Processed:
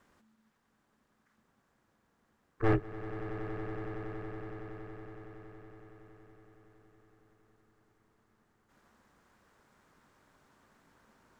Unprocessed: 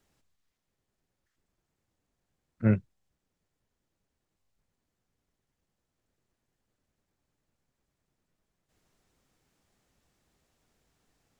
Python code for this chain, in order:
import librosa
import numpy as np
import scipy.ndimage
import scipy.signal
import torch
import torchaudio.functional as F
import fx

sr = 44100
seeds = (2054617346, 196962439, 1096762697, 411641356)

p1 = fx.over_compress(x, sr, threshold_db=-26.0, ratio=-0.5)
p2 = x + (p1 * 10.0 ** (-3.0 / 20.0))
p3 = fx.curve_eq(p2, sr, hz=(460.0, 1400.0, 2200.0), db=(0, 14, 6))
p4 = p3 * np.sin(2.0 * np.pi * 220.0 * np.arange(len(p3)) / sr)
p5 = np.clip(p4, -10.0 ** (-19.0 / 20.0), 10.0 ** (-19.0 / 20.0))
p6 = fx.high_shelf(p5, sr, hz=2100.0, db=-11.5)
y = p6 + fx.echo_swell(p6, sr, ms=93, loudest=8, wet_db=-14.5, dry=0)